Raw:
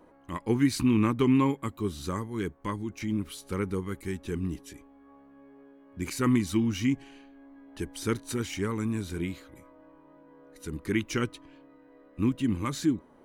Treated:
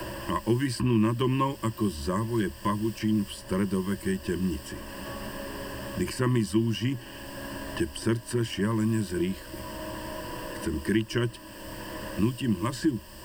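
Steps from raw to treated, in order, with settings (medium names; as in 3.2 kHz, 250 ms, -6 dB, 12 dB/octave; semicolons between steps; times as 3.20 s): added noise pink -52 dBFS; rippled EQ curve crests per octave 1.3, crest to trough 14 dB; three bands compressed up and down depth 70%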